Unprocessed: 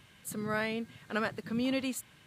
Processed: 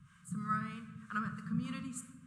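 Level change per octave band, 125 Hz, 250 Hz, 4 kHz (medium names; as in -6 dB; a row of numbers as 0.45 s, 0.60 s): +3.5 dB, -5.0 dB, -14.0 dB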